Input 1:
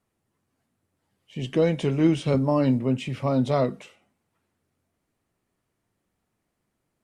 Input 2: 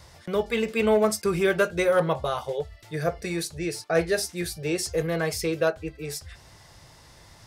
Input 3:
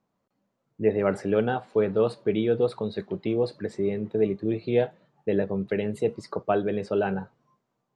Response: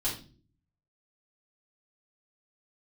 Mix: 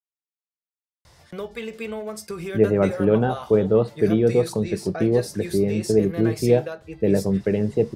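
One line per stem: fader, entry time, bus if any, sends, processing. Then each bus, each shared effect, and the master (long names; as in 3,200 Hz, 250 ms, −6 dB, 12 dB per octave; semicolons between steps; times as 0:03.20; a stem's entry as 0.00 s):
muted
−3.0 dB, 1.05 s, send −21 dB, downward compressor 6 to 1, threshold −26 dBFS, peak gain reduction 9.5 dB
+1.5 dB, 1.75 s, no send, spectral tilt −2.5 dB per octave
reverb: on, pre-delay 3 ms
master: no processing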